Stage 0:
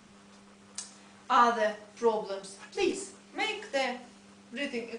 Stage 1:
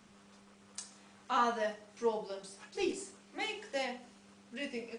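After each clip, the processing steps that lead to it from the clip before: dynamic EQ 1200 Hz, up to -3 dB, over -42 dBFS, Q 0.83; gain -5 dB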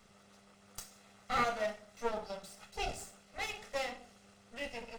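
minimum comb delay 1.5 ms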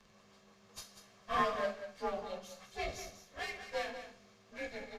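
inharmonic rescaling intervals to 92%; echo 0.192 s -10.5 dB; gain +1 dB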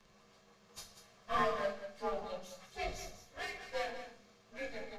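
reverb RT60 0.40 s, pre-delay 6 ms, DRR 7 dB; gain -1.5 dB

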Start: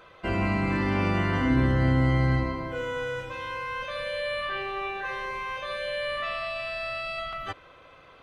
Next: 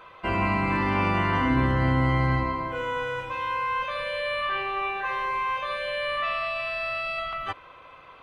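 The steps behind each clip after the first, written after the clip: fifteen-band EQ 1000 Hz +9 dB, 2500 Hz +5 dB, 6300 Hz -3 dB; gain -1 dB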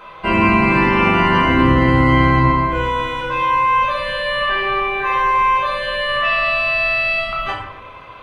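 shoebox room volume 250 m³, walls mixed, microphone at 1.3 m; gain +6.5 dB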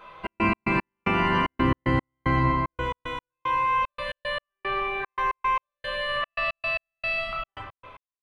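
step gate "xx.x.x..x" 113 bpm -60 dB; gain -8.5 dB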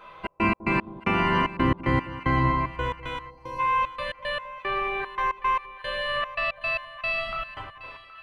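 split-band echo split 870 Hz, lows 0.201 s, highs 0.77 s, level -15.5 dB; spectral gain 3.3–3.59, 990–4100 Hz -15 dB

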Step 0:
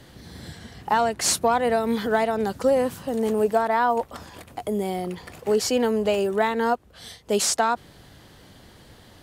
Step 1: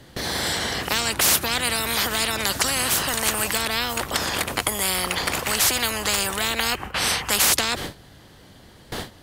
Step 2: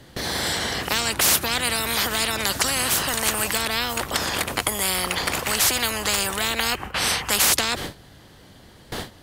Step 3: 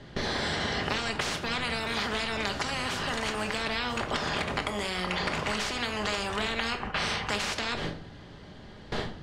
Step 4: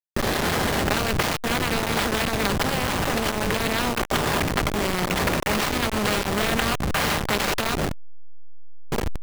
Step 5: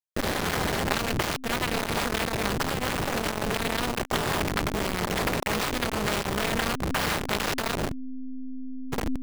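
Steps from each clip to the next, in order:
spectral gain 6.56–7.53, 730–3200 Hz +12 dB; gate with hold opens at -37 dBFS; spectral compressor 10:1
nothing audible
compressor 3:1, threshold -27 dBFS, peak gain reduction 9.5 dB; air absorption 130 m; shoebox room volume 630 m³, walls furnished, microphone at 1.3 m
level-crossing sampler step -25 dBFS; gain +7.5 dB
AM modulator 260 Hz, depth 90%

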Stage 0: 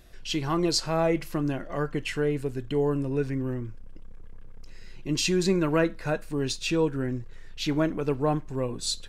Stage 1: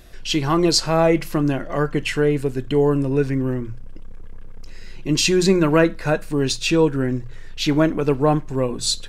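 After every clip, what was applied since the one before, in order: notches 60/120/180 Hz; gain +8 dB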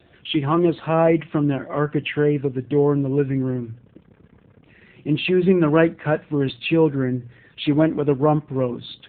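AMR-NB 7.4 kbps 8000 Hz

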